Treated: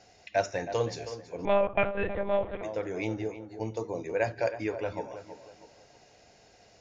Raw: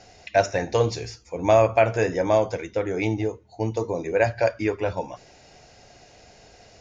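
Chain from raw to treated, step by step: bass shelf 76 Hz -8.5 dB; on a send: tape echo 320 ms, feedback 41%, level -10 dB, low-pass 1.9 kHz; 1.45–2.63 s: on the sum: monotone LPC vocoder at 8 kHz 200 Hz; trim -7.5 dB

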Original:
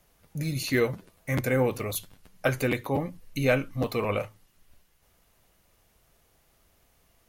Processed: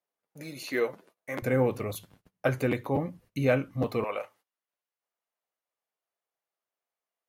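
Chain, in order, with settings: high-pass 400 Hz 12 dB/octave, from 1.42 s 81 Hz, from 4.04 s 600 Hz; gate -55 dBFS, range -20 dB; treble shelf 2.2 kHz -9.5 dB

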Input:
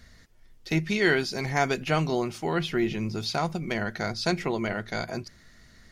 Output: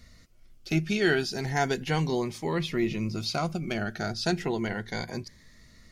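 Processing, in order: Shepard-style phaser rising 0.34 Hz

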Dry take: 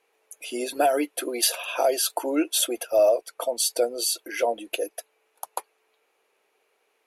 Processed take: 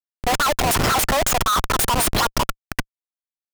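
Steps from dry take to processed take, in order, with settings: level rider gain up to 14 dB; Schmitt trigger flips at -20.5 dBFS; speed mistake 7.5 ips tape played at 15 ips

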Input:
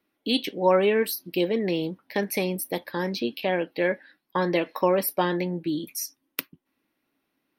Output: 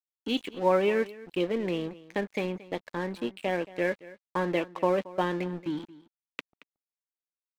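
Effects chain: low-pass 3.3 kHz 24 dB/octave; crossover distortion -39.5 dBFS; delay 226 ms -19 dB; 5.31–5.90 s: tape noise reduction on one side only encoder only; trim -3 dB

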